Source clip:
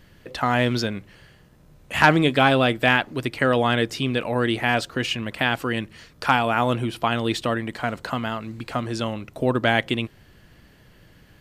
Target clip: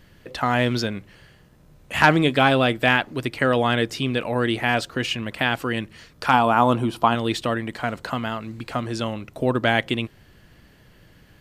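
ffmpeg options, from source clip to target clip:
-filter_complex "[0:a]asettb=1/sr,asplit=3[s0][s1][s2];[s0]atrim=end=6.334[s3];[s1]atrim=start=6.33:end=7.15,asetpts=PTS-STARTPTS,afade=t=in:d=0.004:c=qsin,afade=t=out:st=0.816:d=0.004:c=qsin,equalizer=f=250:t=o:w=1:g=4,equalizer=f=1000:t=o:w=1:g=8,equalizer=f=2000:t=o:w=1:g=-6[s4];[s2]atrim=start=7.146[s5];[s3][s4]acrossfade=d=0.004:c1=hsin:c2=qsin[s6];[s6][s5]acrossfade=d=0.004:c1=qsin:c2=hsin"

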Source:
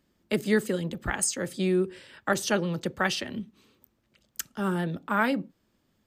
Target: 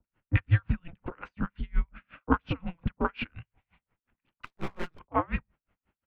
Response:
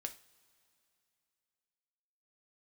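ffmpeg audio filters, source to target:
-filter_complex "[0:a]acrossover=split=710|1000[s0][s1][s2];[s2]volume=8.91,asoftclip=hard,volume=0.112[s3];[s0][s1][s3]amix=inputs=3:normalize=0,acrossover=split=1000[s4][s5];[s5]adelay=40[s6];[s4][s6]amix=inputs=2:normalize=0,highpass=f=320:t=q:w=0.5412,highpass=f=320:t=q:w=1.307,lowpass=f=2900:t=q:w=0.5176,lowpass=f=2900:t=q:w=0.7071,lowpass=f=2900:t=q:w=1.932,afreqshift=-330,asplit=3[s7][s8][s9];[s7]afade=t=out:st=4.44:d=0.02[s10];[s8]aeval=exprs='abs(val(0))':c=same,afade=t=in:st=4.44:d=0.02,afade=t=out:st=4.98:d=0.02[s11];[s9]afade=t=in:st=4.98:d=0.02[s12];[s10][s11][s12]amix=inputs=3:normalize=0,aeval=exprs='val(0)*pow(10,-35*(0.5-0.5*cos(2*PI*5.6*n/s))/20)':c=same,volume=2.11"

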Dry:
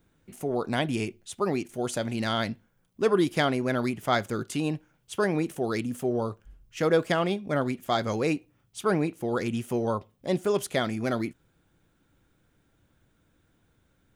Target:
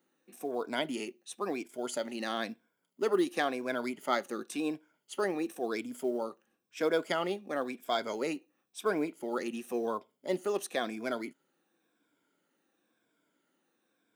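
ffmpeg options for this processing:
-af "afftfilt=real='re*pow(10,9/40*sin(2*PI*(1.7*log(max(b,1)*sr/1024/100)/log(2)-(-0.96)*(pts-256)/sr)))':imag='im*pow(10,9/40*sin(2*PI*(1.7*log(max(b,1)*sr/1024/100)/log(2)-(-0.96)*(pts-256)/sr)))':win_size=1024:overlap=0.75,highpass=f=240:w=0.5412,highpass=f=240:w=1.3066,acrusher=bits=9:mode=log:mix=0:aa=0.000001,volume=0.501"

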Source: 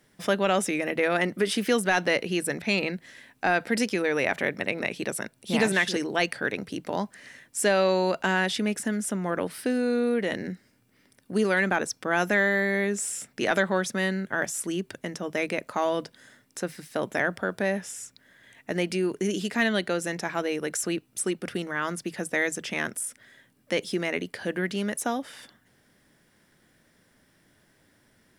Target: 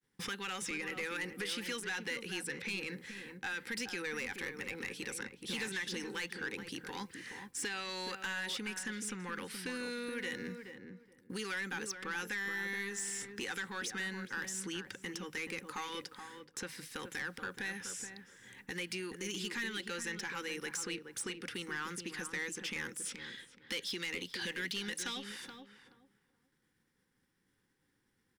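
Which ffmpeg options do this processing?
-filter_complex "[0:a]agate=range=0.0224:threshold=0.00251:ratio=3:detection=peak,asettb=1/sr,asplit=3[s0][s1][s2];[s0]atrim=end=23.054[s3];[s1]atrim=start=23.05:end=25.24,asetpts=PTS-STARTPTS,afade=t=in:d=0.004:c=qsin,afade=t=out:st=2.186:d=0.004:c=qsin,equalizer=f=3800:t=o:w=1.6:g=14.5[s4];[s2]atrim=start=25.236[s5];[s3][s4]acrossfade=d=0.004:c1=hsin:c2=qsin[s6];[s6][s5]acrossfade=d=0.004:c1=qsin:c2=hsin,acrossover=split=1400|7300[s7][s8][s9];[s7]acompressor=threshold=0.00708:ratio=4[s10];[s8]acompressor=threshold=0.0178:ratio=4[s11];[s9]acompressor=threshold=0.00251:ratio=4[s12];[s10][s11][s12]amix=inputs=3:normalize=0,asoftclip=type=tanh:threshold=0.0266,asuperstop=centerf=640:order=12:qfactor=3.4,asplit=2[s13][s14];[s14]adelay=425,lowpass=f=1100:p=1,volume=0.501,asplit=2[s15][s16];[s16]adelay=425,lowpass=f=1100:p=1,volume=0.22,asplit=2[s17][s18];[s18]adelay=425,lowpass=f=1100:p=1,volume=0.22[s19];[s13][s15][s17][s19]amix=inputs=4:normalize=0"

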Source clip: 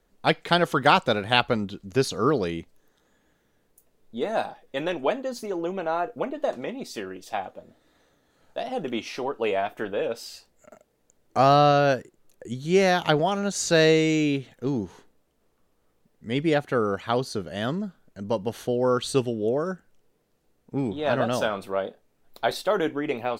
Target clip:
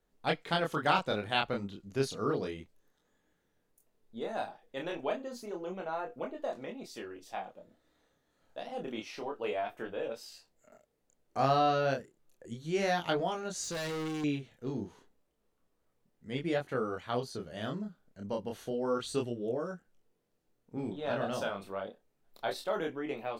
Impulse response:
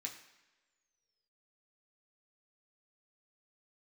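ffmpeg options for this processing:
-filter_complex "[0:a]flanger=delay=22.5:depth=7.8:speed=0.3,asettb=1/sr,asplit=3[s0][s1][s2];[s0]atrim=end=13.634[s3];[s1]atrim=start=13.63:end=14.24,asetpts=PTS-STARTPTS,afade=t=in:d=0.004:c=qsin,afade=t=out:st=0.606:d=0.004:c=qsin,volume=25.1,asoftclip=hard,volume=0.0398[s4];[s2]atrim=start=14.236[s5];[s3][s4]acrossfade=d=0.004:c1=hsin:c2=qsin[s6];[s6][s5]acrossfade=d=0.004:c1=qsin:c2=hsin,volume=0.473"

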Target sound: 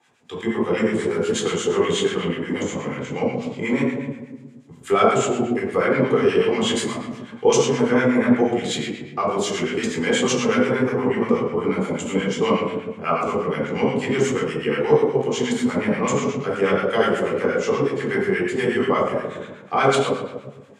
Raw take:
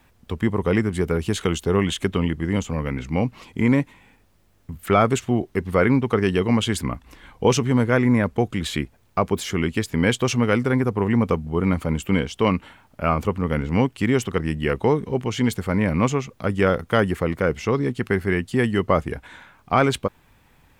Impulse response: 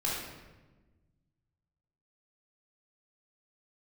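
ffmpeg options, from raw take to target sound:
-filter_complex "[0:a]highpass=f=160:w=0.5412,highpass=f=160:w=1.3066,equalizer=f=170:t=q:w=4:g=-8,equalizer=f=300:t=q:w=4:g=-6,equalizer=f=430:t=q:w=4:g=3,equalizer=f=3200:t=q:w=4:g=3,equalizer=f=7000:t=q:w=4:g=8,lowpass=f=9700:w=0.5412,lowpass=f=9700:w=1.3066[s0];[1:a]atrim=start_sample=2205[s1];[s0][s1]afir=irnorm=-1:irlink=0,acrossover=split=1100[s2][s3];[s2]aeval=exprs='val(0)*(1-0.7/2+0.7/2*cos(2*PI*8.3*n/s))':c=same[s4];[s3]aeval=exprs='val(0)*(1-0.7/2-0.7/2*cos(2*PI*8.3*n/s))':c=same[s5];[s4][s5]amix=inputs=2:normalize=0,volume=0.794"

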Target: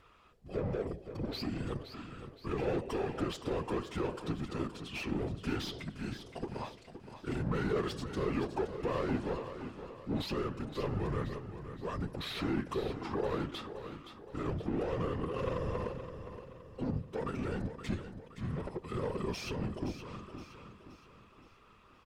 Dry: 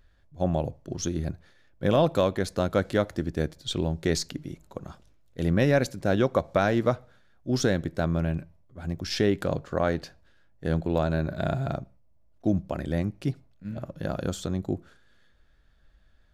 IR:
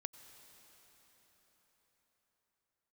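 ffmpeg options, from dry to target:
-filter_complex "[0:a]highshelf=f=3700:g=10.5,asplit=2[s0][s1];[s1]acompressor=threshold=0.0178:ratio=6,volume=1[s2];[s0][s2]amix=inputs=2:normalize=0,alimiter=limit=0.188:level=0:latency=1:release=99,asplit=2[s3][s4];[s4]highpass=f=720:p=1,volume=14.1,asoftclip=type=tanh:threshold=0.188[s5];[s3][s5]amix=inputs=2:normalize=0,lowpass=f=1600:p=1,volume=0.501,afftfilt=real='hypot(re,im)*cos(2*PI*random(0))':imag='hypot(re,im)*sin(2*PI*random(1))':win_size=512:overlap=0.75,asplit=2[s6][s7];[s7]aecho=0:1:385|770|1155|1540|1925:0.299|0.131|0.0578|0.0254|0.0112[s8];[s6][s8]amix=inputs=2:normalize=0,asetrate=32667,aresample=44100,volume=0.531"

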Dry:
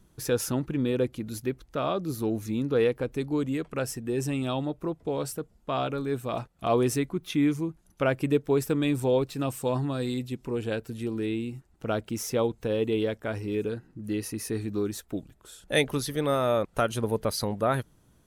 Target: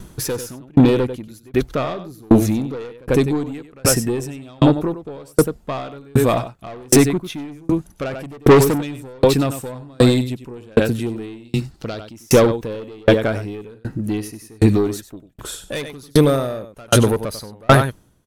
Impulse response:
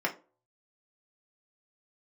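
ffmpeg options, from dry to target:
-filter_complex "[0:a]asettb=1/sr,asplit=3[s0][s1][s2];[s0]atrim=end=16.084[s3];[s1]atrim=start=16.08:end=16.7,asetpts=PTS-STARTPTS,afade=t=in:d=0.004:c=qsin,afade=t=out:st=0.616:d=0.004:c=qsin,equalizer=f=1600:w=0.44:g=-8.5[s4];[s2]atrim=start=16.696[s5];[s3][s4]acrossfade=d=0.004:c1=hsin:c2=qsin[s6];[s6][s5]acrossfade=d=0.004:c1=qsin:c2=hsin,aecho=1:1:95:0.355,asettb=1/sr,asplit=3[s7][s8][s9];[s7]atrim=end=8.134[s10];[s8]atrim=start=8.13:end=8.81,asetpts=PTS-STARTPTS,afade=t=in:d=0.004:c=qsin,afade=t=out:st=0.676:d=0.004:c=qsin,acontrast=66[s11];[s9]atrim=start=8.806[s12];[s10][s11]acrossfade=d=0.004:c1=hsin:c2=qsin[s13];[s13][s12]acrossfade=d=0.004:c1=qsin:c2=hsin,aeval=exprs='(tanh(15.8*val(0)+0.2)-tanh(0.2))/15.8':c=same,asettb=1/sr,asplit=3[s14][s15][s16];[s14]atrim=end=11.454[s17];[s15]atrim=start=11.45:end=12.13,asetpts=PTS-STARTPTS,afade=t=in:d=0.004:c=qsin,afade=t=out:st=0.676:d=0.004:c=qsin,equalizer=f=4500:w=1.6:g=13.5[s18];[s16]atrim=start=12.126[s19];[s17][s18]acrossfade=d=0.004:c1=hsin:c2=qsin[s20];[s20][s19]acrossfade=d=0.004:c1=qsin:c2=hsin,alimiter=level_in=15:limit=0.891:release=50:level=0:latency=1,aeval=exprs='val(0)*pow(10,-37*if(lt(mod(1.3*n/s,1),2*abs(1.3)/1000),1-mod(1.3*n/s,1)/(2*abs(1.3)/1000),(mod(1.3*n/s,1)-2*abs(1.3)/1000)/(1-2*abs(1.3)/1000))/20)':c=same"

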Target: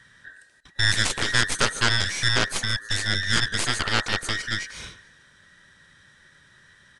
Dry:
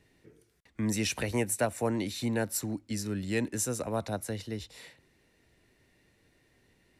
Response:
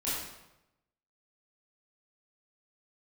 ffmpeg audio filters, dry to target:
-filter_complex "[0:a]afftfilt=real='real(if(between(b,1,1012),(2*floor((b-1)/92)+1)*92-b,b),0)':imag='imag(if(between(b,1,1012),(2*floor((b-1)/92)+1)*92-b,b),0)*if(between(b,1,1012),-1,1)':win_size=2048:overlap=0.75,adynamicequalizer=threshold=0.00141:dfrequency=460:dqfactor=2.6:tfrequency=460:tqfactor=2.6:attack=5:release=100:ratio=0.375:range=3.5:mode=boostabove:tftype=bell,asplit=2[s0][s1];[s1]alimiter=level_in=1.12:limit=0.0631:level=0:latency=1:release=107,volume=0.891,volume=1.12[s2];[s0][s2]amix=inputs=2:normalize=0,aecho=1:1:147|294|441|588:0.0891|0.0446|0.0223|0.0111,aeval=exprs='0.251*(cos(1*acos(clip(val(0)/0.251,-1,1)))-cos(1*PI/2))+0.112*(cos(6*acos(clip(val(0)/0.251,-1,1)))-cos(6*PI/2))+0.1*(cos(7*acos(clip(val(0)/0.251,-1,1)))-cos(7*PI/2))+0.0355*(cos(8*acos(clip(val(0)/0.251,-1,1)))-cos(8*PI/2))':c=same,aresample=22050,aresample=44100"

